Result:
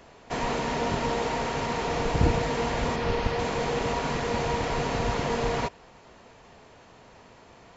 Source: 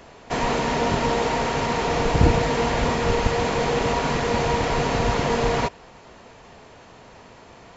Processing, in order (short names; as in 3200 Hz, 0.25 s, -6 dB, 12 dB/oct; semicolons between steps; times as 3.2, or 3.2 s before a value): 2.96–3.39 LPF 5700 Hz 24 dB/oct; gain -5.5 dB